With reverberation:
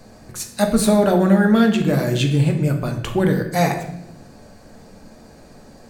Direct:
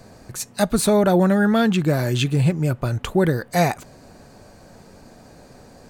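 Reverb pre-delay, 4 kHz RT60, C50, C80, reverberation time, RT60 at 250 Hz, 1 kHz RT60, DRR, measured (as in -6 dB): 4 ms, 0.65 s, 8.0 dB, 11.0 dB, 0.80 s, 1.4 s, 0.65 s, 3.0 dB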